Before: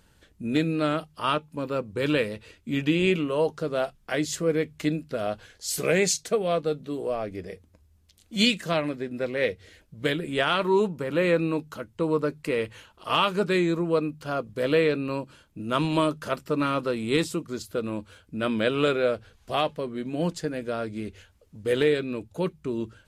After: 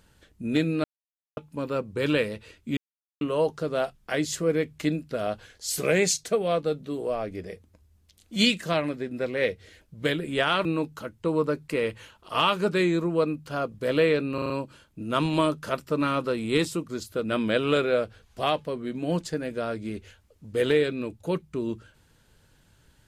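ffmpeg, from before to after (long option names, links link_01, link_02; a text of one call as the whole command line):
ffmpeg -i in.wav -filter_complex "[0:a]asplit=11[link_01][link_02][link_03][link_04][link_05][link_06][link_07][link_08][link_09][link_10][link_11];[link_01]atrim=end=0.84,asetpts=PTS-STARTPTS,afade=type=out:start_time=0.836:duration=0.004:curve=hsin[link_12];[link_02]atrim=start=0.84:end=1.37,asetpts=PTS-STARTPTS,volume=0[link_13];[link_03]atrim=start=1.37:end=2.77,asetpts=PTS-STARTPTS,afade=type=in:duration=0.004:curve=hsin,afade=type=out:start_time=1.396:duration=0.004:curve=hsin[link_14];[link_04]atrim=start=2.77:end=3.21,asetpts=PTS-STARTPTS,volume=0[link_15];[link_05]atrim=start=3.21:end=10.652,asetpts=PTS-STARTPTS,afade=type=in:duration=0.004:curve=hsin[link_16];[link_06]atrim=start=11.398:end=15.132[link_17];[link_07]atrim=start=15.088:end=15.132[link_18];[link_08]atrim=start=15.088:end=15.132[link_19];[link_09]atrim=start=15.088:end=15.132[link_20];[link_10]atrim=start=15.088:end=17.832[link_21];[link_11]atrim=start=18.348[link_22];[link_12][link_13][link_14][link_15][link_16]concat=n=5:v=0:a=1[link_23];[link_23][link_17]acrossfade=duration=0.004:curve1=hsin:curve2=hsin[link_24];[link_24][link_18]acrossfade=duration=0.004:curve1=hsin:curve2=hsin[link_25];[link_25][link_19]acrossfade=duration=0.004:curve1=hsin:curve2=hsin[link_26];[link_26][link_20]acrossfade=duration=0.004:curve1=hsin:curve2=hsin[link_27];[link_27][link_21]acrossfade=duration=0.004:curve1=hsin:curve2=hsin[link_28];[link_28][link_22]acrossfade=duration=0.004:curve1=hsin:curve2=hsin" out.wav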